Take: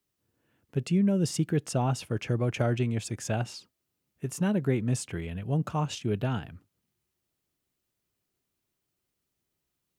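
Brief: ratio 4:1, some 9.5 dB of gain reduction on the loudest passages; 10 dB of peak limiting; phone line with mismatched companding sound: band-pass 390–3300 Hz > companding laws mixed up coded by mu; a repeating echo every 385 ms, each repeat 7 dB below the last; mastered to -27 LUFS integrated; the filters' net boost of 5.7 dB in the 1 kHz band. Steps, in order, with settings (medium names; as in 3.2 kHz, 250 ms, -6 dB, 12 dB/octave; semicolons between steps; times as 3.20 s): peaking EQ 1 kHz +8 dB; compression 4:1, threshold -32 dBFS; peak limiter -28 dBFS; band-pass 390–3300 Hz; feedback delay 385 ms, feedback 45%, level -7 dB; companding laws mixed up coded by mu; trim +14 dB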